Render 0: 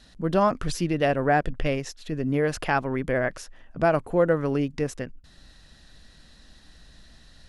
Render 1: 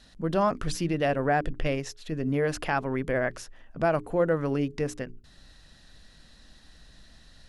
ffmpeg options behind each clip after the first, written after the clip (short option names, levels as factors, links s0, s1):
-filter_complex "[0:a]bandreject=f=60:t=h:w=6,bandreject=f=120:t=h:w=6,bandreject=f=180:t=h:w=6,bandreject=f=240:t=h:w=6,bandreject=f=300:t=h:w=6,bandreject=f=360:t=h:w=6,bandreject=f=420:t=h:w=6,asplit=2[s0][s1];[s1]alimiter=limit=0.15:level=0:latency=1,volume=0.891[s2];[s0][s2]amix=inputs=2:normalize=0,volume=0.447"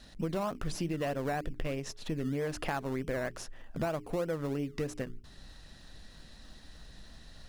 -filter_complex "[0:a]asplit=2[s0][s1];[s1]acrusher=samples=22:mix=1:aa=0.000001:lfo=1:lforange=13.2:lforate=3.2,volume=0.335[s2];[s0][s2]amix=inputs=2:normalize=0,acompressor=threshold=0.0282:ratio=5"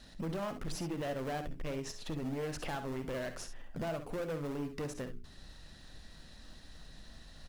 -af "volume=44.7,asoftclip=hard,volume=0.0224,aecho=1:1:55|67:0.237|0.282,volume=0.841"